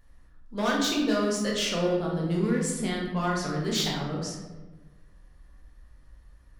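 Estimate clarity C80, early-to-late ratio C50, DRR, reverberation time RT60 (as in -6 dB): 5.0 dB, 2.5 dB, -3.0 dB, 1.3 s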